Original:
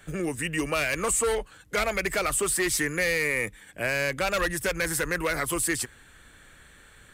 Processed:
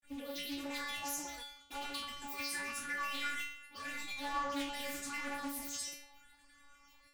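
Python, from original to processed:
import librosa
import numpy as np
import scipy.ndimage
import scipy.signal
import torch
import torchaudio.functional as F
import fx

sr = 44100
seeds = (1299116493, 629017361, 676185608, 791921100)

p1 = fx.peak_eq(x, sr, hz=470.0, db=-10.5, octaves=0.64)
p2 = fx.fold_sine(p1, sr, drive_db=9, ceiling_db=-15.0)
p3 = p1 + F.gain(torch.from_numpy(p2), -5.0).numpy()
p4 = fx.granulator(p3, sr, seeds[0], grain_ms=100.0, per_s=20.0, spray_ms=100.0, spread_st=12)
p5 = fx.stiff_resonator(p4, sr, f0_hz=280.0, decay_s=0.79, stiffness=0.002)
y = fx.doppler_dist(p5, sr, depth_ms=0.25)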